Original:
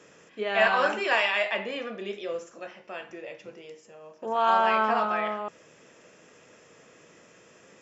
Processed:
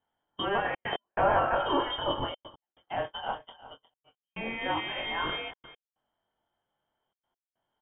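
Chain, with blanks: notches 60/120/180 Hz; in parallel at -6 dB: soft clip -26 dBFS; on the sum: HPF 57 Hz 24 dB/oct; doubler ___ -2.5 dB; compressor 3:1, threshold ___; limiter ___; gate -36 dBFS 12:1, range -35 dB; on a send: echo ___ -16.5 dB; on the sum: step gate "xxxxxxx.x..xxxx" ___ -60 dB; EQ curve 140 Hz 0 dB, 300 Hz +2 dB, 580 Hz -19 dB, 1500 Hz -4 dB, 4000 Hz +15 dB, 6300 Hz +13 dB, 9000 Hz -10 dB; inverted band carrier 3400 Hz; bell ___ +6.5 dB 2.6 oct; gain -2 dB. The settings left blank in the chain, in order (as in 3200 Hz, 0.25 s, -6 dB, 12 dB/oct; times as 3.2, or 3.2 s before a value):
23 ms, -27 dBFS, -21 dBFS, 0.358 s, 141 bpm, 670 Hz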